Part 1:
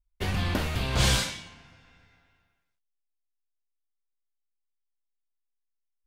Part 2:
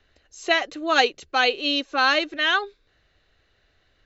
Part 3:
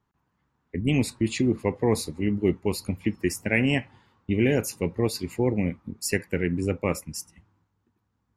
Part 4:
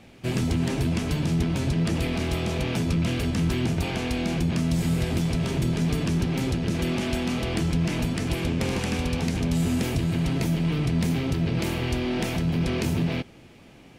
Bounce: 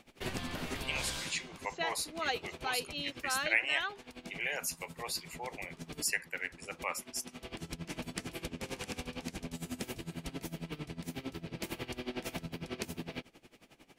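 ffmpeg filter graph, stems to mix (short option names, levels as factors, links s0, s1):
-filter_complex "[0:a]acompressor=threshold=0.0447:ratio=6,volume=0.501[s0];[1:a]adelay=1300,volume=0.168[s1];[2:a]highpass=f=730:w=0.5412,highpass=f=730:w=1.3066,volume=0.708,asplit=2[s2][s3];[3:a]highshelf=f=7700:g=6.5,acompressor=threshold=0.0501:ratio=6,aeval=exprs='val(0)*pow(10,-19*(0.5-0.5*cos(2*PI*11*n/s))/20)':c=same,volume=0.75[s4];[s3]apad=whole_len=616774[s5];[s4][s5]sidechaincompress=threshold=0.00794:ratio=8:attack=10:release=666[s6];[s0][s1][s2][s6]amix=inputs=4:normalize=0,equalizer=f=95:t=o:w=2.2:g=-10.5"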